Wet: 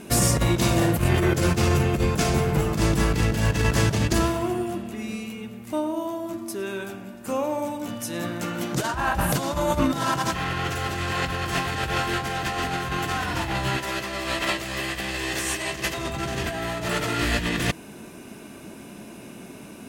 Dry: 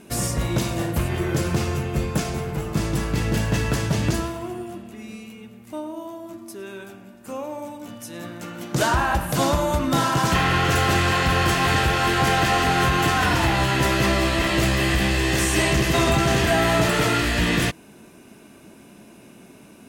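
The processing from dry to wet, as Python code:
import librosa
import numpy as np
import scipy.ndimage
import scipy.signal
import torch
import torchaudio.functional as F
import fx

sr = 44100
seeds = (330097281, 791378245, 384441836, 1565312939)

y = fx.over_compress(x, sr, threshold_db=-24.0, ratio=-0.5)
y = fx.low_shelf(y, sr, hz=280.0, db=-10.5, at=(13.77, 15.97))
y = y * librosa.db_to_amplitude(1.5)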